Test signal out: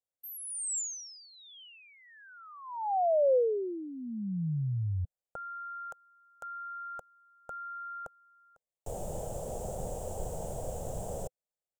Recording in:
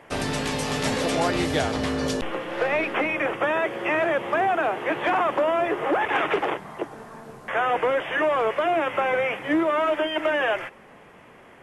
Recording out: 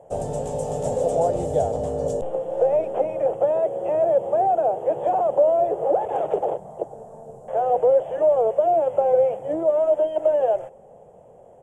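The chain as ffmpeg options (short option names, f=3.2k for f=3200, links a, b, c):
-af "firequalizer=gain_entry='entry(160,0);entry(280,-11);entry(510,8);entry(770,3);entry(1100,-17);entry(2100,-28);entry(3100,-20);entry(4300,-25);entry(7400,-1);entry(11000,-12)':delay=0.05:min_phase=1"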